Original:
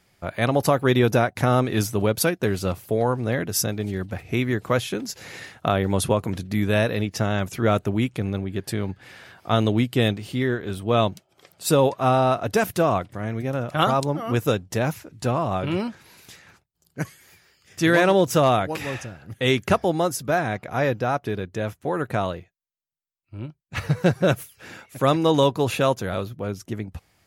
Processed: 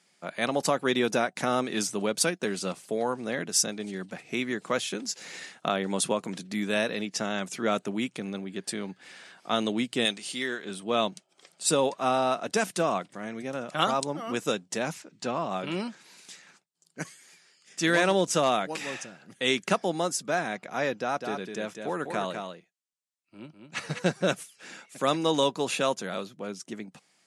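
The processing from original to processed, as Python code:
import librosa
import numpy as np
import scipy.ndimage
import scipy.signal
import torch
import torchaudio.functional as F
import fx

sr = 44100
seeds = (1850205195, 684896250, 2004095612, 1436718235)

y = fx.tilt_eq(x, sr, slope=2.5, at=(10.05, 10.65))
y = fx.lowpass(y, sr, hz=6000.0, slope=12, at=(15.02, 15.5))
y = fx.echo_single(y, sr, ms=203, db=-6.0, at=(21.15, 23.98), fade=0.02)
y = scipy.signal.sosfilt(scipy.signal.ellip(3, 1.0, 40, [180.0, 8900.0], 'bandpass', fs=sr, output='sos'), y)
y = fx.high_shelf(y, sr, hz=3300.0, db=10.5)
y = y * librosa.db_to_amplitude(-6.0)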